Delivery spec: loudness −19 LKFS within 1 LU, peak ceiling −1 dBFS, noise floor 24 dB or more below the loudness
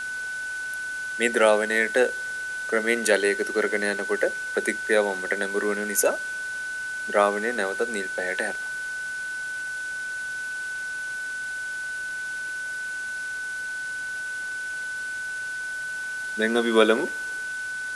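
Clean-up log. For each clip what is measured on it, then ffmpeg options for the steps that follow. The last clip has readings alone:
interfering tone 1,500 Hz; level of the tone −29 dBFS; background noise floor −32 dBFS; target noise floor −50 dBFS; integrated loudness −26.0 LKFS; sample peak −4.0 dBFS; target loudness −19.0 LKFS
→ -af "bandreject=frequency=1500:width=30"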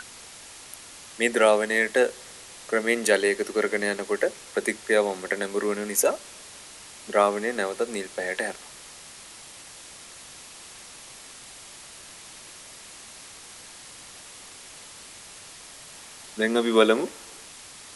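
interfering tone none found; background noise floor −45 dBFS; target noise floor −49 dBFS
→ -af "afftdn=noise_reduction=6:noise_floor=-45"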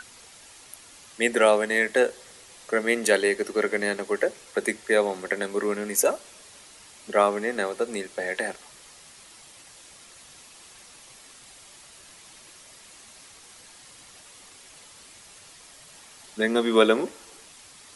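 background noise floor −50 dBFS; integrated loudness −24.5 LKFS; sample peak −5.0 dBFS; target loudness −19.0 LKFS
→ -af "volume=5.5dB,alimiter=limit=-1dB:level=0:latency=1"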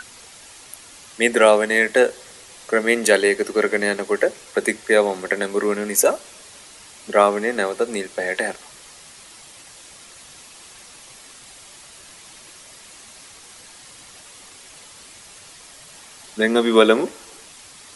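integrated loudness −19.0 LKFS; sample peak −1.0 dBFS; background noise floor −44 dBFS

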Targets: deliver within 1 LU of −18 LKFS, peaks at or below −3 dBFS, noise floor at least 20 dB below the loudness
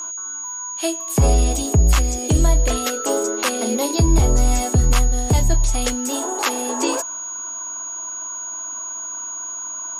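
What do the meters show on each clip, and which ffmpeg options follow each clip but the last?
interfering tone 6,700 Hz; level of the tone −27 dBFS; integrated loudness −20.5 LKFS; sample peak −5.0 dBFS; target loudness −18.0 LKFS
→ -af "bandreject=frequency=6700:width=30"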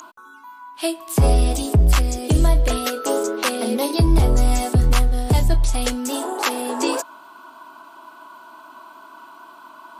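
interfering tone none found; integrated loudness −20.0 LKFS; sample peak −6.0 dBFS; target loudness −18.0 LKFS
→ -af "volume=2dB"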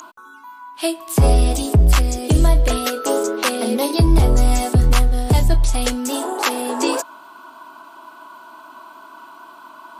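integrated loudness −18.0 LKFS; sample peak −4.0 dBFS; background noise floor −43 dBFS

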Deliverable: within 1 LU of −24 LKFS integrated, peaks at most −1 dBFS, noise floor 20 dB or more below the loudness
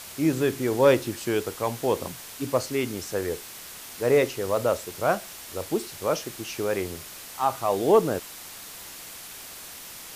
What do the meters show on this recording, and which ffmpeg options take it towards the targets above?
background noise floor −42 dBFS; target noise floor −46 dBFS; integrated loudness −26.0 LKFS; sample peak −8.5 dBFS; target loudness −24.0 LKFS
→ -af "afftdn=noise_reduction=6:noise_floor=-42"
-af "volume=2dB"

